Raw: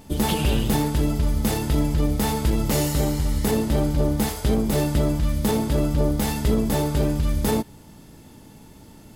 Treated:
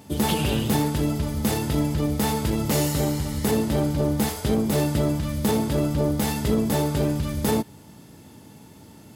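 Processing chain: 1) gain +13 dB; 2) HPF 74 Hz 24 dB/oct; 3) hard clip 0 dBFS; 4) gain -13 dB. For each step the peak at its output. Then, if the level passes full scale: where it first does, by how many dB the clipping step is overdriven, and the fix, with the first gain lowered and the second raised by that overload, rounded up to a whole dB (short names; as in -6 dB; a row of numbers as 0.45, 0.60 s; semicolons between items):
+2.0, +4.0, 0.0, -13.0 dBFS; step 1, 4.0 dB; step 1 +9 dB, step 4 -9 dB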